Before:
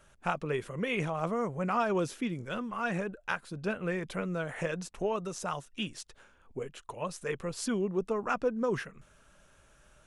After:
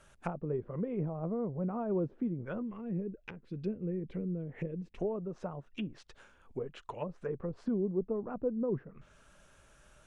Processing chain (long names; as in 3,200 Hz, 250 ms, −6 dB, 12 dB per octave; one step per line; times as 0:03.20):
treble cut that deepens with the level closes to 460 Hz, closed at −31 dBFS
0:02.62–0:04.98: flat-topped bell 950 Hz −13.5 dB